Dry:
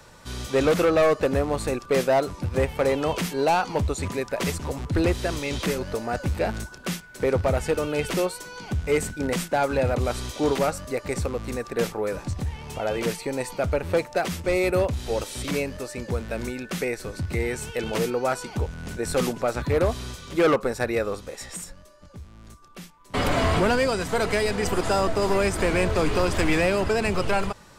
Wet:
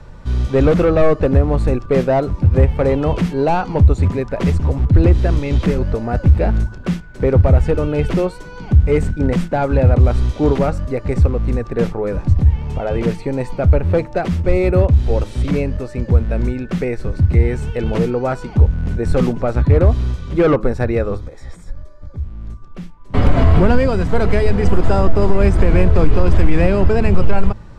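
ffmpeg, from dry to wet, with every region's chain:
ffmpeg -i in.wav -filter_complex "[0:a]asettb=1/sr,asplit=3[link_01][link_02][link_03];[link_01]atrim=end=21.174[link_04];[link_02]atrim=start=21.17:end=22.18,asetpts=PTS-STARTPTS,afade=type=in:duration=0.004:curve=qsin,afade=type=out:start_time=1.006:duration=0.004:curve=qsin,asuperstop=centerf=2800:order=4:qfactor=5,equalizer=frequency=200:width=5.3:gain=-12.5,acompressor=threshold=-39dB:ratio=5:attack=3.2:release=140:knee=1:detection=peak[link_05];[link_03]atrim=start=22.176[link_06];[link_04][link_05]acrossfade=duration=0.004:curve1=hsin:curve2=qsin[link_07];[link_07][link_06]acrossfade=duration=0.004:curve1=qsin:curve2=hsin,aemphasis=mode=reproduction:type=riaa,bandreject=frequency=106.7:width_type=h:width=4,bandreject=frequency=213.4:width_type=h:width=4,bandreject=frequency=320.1:width_type=h:width=4,alimiter=level_in=4dB:limit=-1dB:release=50:level=0:latency=1,volume=-1dB" out.wav

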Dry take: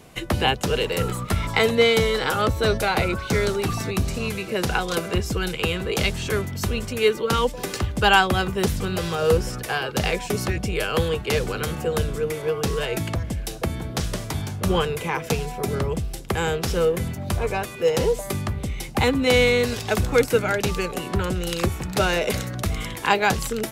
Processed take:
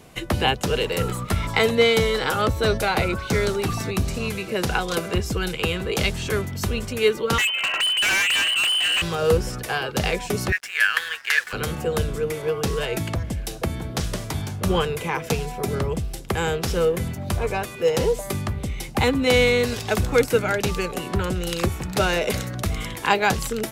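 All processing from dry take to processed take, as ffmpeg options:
ffmpeg -i in.wav -filter_complex "[0:a]asettb=1/sr,asplit=3[link_01][link_02][link_03];[link_01]atrim=end=7.384[link_04];[link_02]atrim=start=7.38:end=9.02,asetpts=PTS-STARTPTS,afade=type=in:duration=0.004:curve=qsin,afade=type=out:start_time=1.636:duration=0.004:curve=qsin,lowpass=frequency=2600:width_type=q:width=0.5098,lowpass=frequency=2600:width_type=q:width=0.6013,lowpass=frequency=2600:width_type=q:width=0.9,lowpass=frequency=2600:width_type=q:width=2.563,afreqshift=-3100,asplit=2[link_05][link_06];[link_06]highpass=frequency=720:poles=1,volume=18dB,asoftclip=type=tanh:threshold=-4dB[link_07];[link_05][link_07]amix=inputs=2:normalize=0,lowpass=frequency=2300:poles=1,volume=-6dB,volume=19dB,asoftclip=hard,volume=-19dB[link_08];[link_03]atrim=start=9.016[link_09];[link_04][link_08]acrossfade=duration=0.004:curve1=hsin:curve2=qsin[link_10];[link_10][link_09]acrossfade=duration=0.004:curve1=qsin:curve2=hsin,asettb=1/sr,asplit=3[link_11][link_12][link_13];[link_11]atrim=end=10.524[link_14];[link_12]atrim=start=10.52:end=11.53,asetpts=PTS-STARTPTS,afade=type=in:duration=0.004:curve=qsin,afade=type=out:start_time=1.006:duration=0.004:curve=qsin,highpass=frequency=1700:width_type=q:width=7.3,aeval=exprs='sgn(val(0))*max(abs(val(0))-0.00891,0)':channel_layout=same[link_15];[link_13]atrim=start=11.526[link_16];[link_14][link_15]acrossfade=duration=0.004:curve1=hsin:curve2=qsin[link_17];[link_17][link_16]acrossfade=duration=0.004:curve1=qsin:curve2=hsin" out.wav

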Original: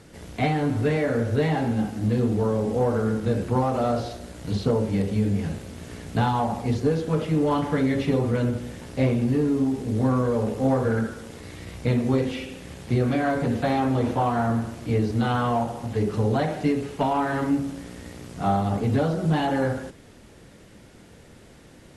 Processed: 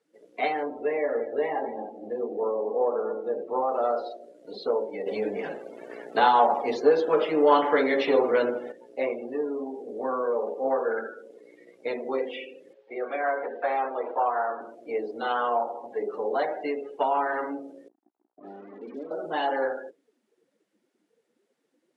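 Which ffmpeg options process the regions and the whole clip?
ffmpeg -i in.wav -filter_complex "[0:a]asettb=1/sr,asplit=3[link_01][link_02][link_03];[link_01]atrim=end=0.634[link_04];[link_02]atrim=start=0.63:end=3.69,asetpts=PTS-STARTPTS,afade=type=in:duration=0.004:curve=qsin,afade=type=out:start_time=3.056:duration=0.004:curve=qsin,highshelf=frequency=3000:gain=-9,bandreject=frequency=1500:width=6.9,aecho=1:1:235:0.251,atrim=end_sample=134946[link_05];[link_03]atrim=start=3.686[link_06];[link_04][link_05]acrossfade=duration=0.004:curve1=hsin:curve2=qsin[link_07];[link_07][link_06]acrossfade=duration=0.004:curve1=qsin:curve2=hsin,asettb=1/sr,asplit=3[link_08][link_09][link_10];[link_08]atrim=end=5.064[link_11];[link_09]atrim=start=5.06:end=8.72,asetpts=PTS-STARTPTS,afade=type=in:duration=0.004:curve=qsin,afade=type=out:start_time=3.656:duration=0.004:curve=qsin,lowshelf=frequency=100:gain=9.5,acontrast=85,aeval=exprs='sgn(val(0))*max(abs(val(0))-0.00794,0)':channel_layout=same[link_12];[link_10]atrim=start=8.716[link_13];[link_11][link_12]acrossfade=duration=0.004:curve1=hsin:curve2=qsin[link_14];[link_14][link_13]acrossfade=duration=0.004:curve1=qsin:curve2=hsin,asettb=1/sr,asplit=3[link_15][link_16][link_17];[link_15]atrim=end=12.734[link_18];[link_16]atrim=start=12.73:end=14.61,asetpts=PTS-STARTPTS,afade=type=in:duration=0.004:curve=qsin,afade=type=out:start_time=1.876:duration=0.004:curve=qsin,acrossover=split=3700[link_19][link_20];[link_20]acompressor=threshold=-50dB:ratio=4:attack=1:release=60[link_21];[link_19][link_21]amix=inputs=2:normalize=0,acrossover=split=370 4800:gain=0.251 1 0.0631[link_22][link_23][link_24];[link_22][link_23][link_24]amix=inputs=3:normalize=0[link_25];[link_17]atrim=start=14.606[link_26];[link_18][link_25]acrossfade=duration=0.004:curve1=hsin:curve2=qsin[link_27];[link_27][link_26]acrossfade=duration=0.004:curve1=qsin:curve2=hsin,asettb=1/sr,asplit=3[link_28][link_29][link_30];[link_28]atrim=end=17.884[link_31];[link_29]atrim=start=17.88:end=19.11,asetpts=PTS-STARTPTS,afade=type=in:duration=0.004:curve=qsin,afade=type=out:start_time=1.226:duration=0.004:curve=qsin,asuperpass=centerf=260:order=4:qfactor=1.5,acrusher=bits=5:mix=0:aa=0.5[link_32];[link_30]atrim=start=19.106[link_33];[link_31][link_32]acrossfade=duration=0.004:curve1=hsin:curve2=qsin[link_34];[link_34][link_33]acrossfade=duration=0.004:curve1=qsin:curve2=hsin,afftdn=noise_reduction=26:noise_floor=-37,highpass=frequency=400:width=0.5412,highpass=frequency=400:width=1.3066,adynamicequalizer=threshold=0.00251:dfrequency=6100:dqfactor=0.7:tfrequency=6100:tqfactor=0.7:attack=5:release=100:ratio=0.375:range=2.5:mode=cutabove:tftype=highshelf" out.wav

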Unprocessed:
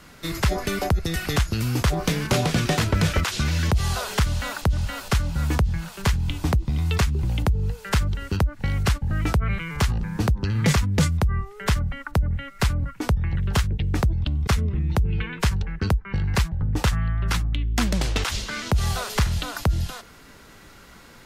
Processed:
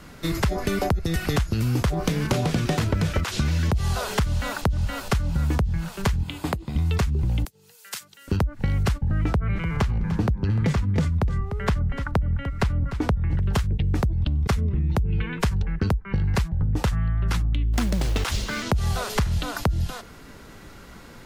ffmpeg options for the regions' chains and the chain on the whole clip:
ffmpeg -i in.wav -filter_complex "[0:a]asettb=1/sr,asplit=3[link_01][link_02][link_03];[link_01]atrim=end=6.234[link_04];[link_02]atrim=start=6.23:end=6.76,asetpts=PTS-STARTPTS,afade=type=in:duration=0.004:curve=qsin,afade=type=out:start_time=0.526:duration=0.004:curve=qsin,highpass=frequency=440:poles=1,equalizer=frequency=5800:width=7.9:gain=-12[link_05];[link_03]atrim=start=6.756[link_06];[link_04][link_05]acrossfade=duration=0.004:curve1=hsin:curve2=qsin[link_07];[link_07][link_06]acrossfade=duration=0.004:curve1=qsin:curve2=hsin,asettb=1/sr,asplit=3[link_08][link_09][link_10];[link_08]atrim=end=7.454[link_11];[link_09]atrim=start=7.45:end=8.28,asetpts=PTS-STARTPTS,afade=type=in:duration=0.004:curve=qsin,afade=type=out:start_time=0.826:duration=0.004:curve=qsin,highpass=frequency=120:width=0.5412,highpass=frequency=120:width=1.3066,aderivative[link_12];[link_10]atrim=start=8.276[link_13];[link_11][link_12]acrossfade=duration=0.004:curve1=hsin:curve2=qsin[link_14];[link_14][link_13]acrossfade=duration=0.004:curve1=qsin:curve2=hsin,asettb=1/sr,asplit=3[link_15][link_16][link_17];[link_15]atrim=end=9.014[link_18];[link_16]atrim=start=9.01:end=13.42,asetpts=PTS-STARTPTS,afade=type=in:duration=0.004:curve=qsin,afade=type=out:start_time=4.406:duration=0.004:curve=qsin,aemphasis=mode=reproduction:type=cd,aecho=1:1:298:0.2,atrim=end_sample=194481[link_19];[link_17]atrim=start=13.416[link_20];[link_18][link_19]acrossfade=duration=0.004:curve1=hsin:curve2=qsin[link_21];[link_21][link_20]acrossfade=duration=0.004:curve1=qsin:curve2=hsin,asettb=1/sr,asplit=3[link_22][link_23][link_24];[link_22]atrim=end=17.734[link_25];[link_23]atrim=start=17.73:end=18.63,asetpts=PTS-STARTPTS,afade=type=in:duration=0.004:curve=qsin,afade=type=out:start_time=0.896:duration=0.004:curve=qsin,equalizer=frequency=11000:width_type=o:width=0.43:gain=2.5,acrusher=bits=5:mode=log:mix=0:aa=0.000001[link_26];[link_24]atrim=start=18.626[link_27];[link_25][link_26]acrossfade=duration=0.004:curve1=hsin:curve2=qsin[link_28];[link_28][link_27]acrossfade=duration=0.004:curve1=qsin:curve2=hsin,tiltshelf=frequency=820:gain=3,acompressor=threshold=-22dB:ratio=6,volume=2.5dB" out.wav

